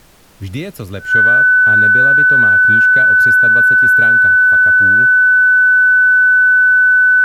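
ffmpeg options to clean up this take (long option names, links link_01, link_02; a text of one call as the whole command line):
ffmpeg -i in.wav -af "bandreject=frequency=1500:width=30,agate=range=-21dB:threshold=-19dB" out.wav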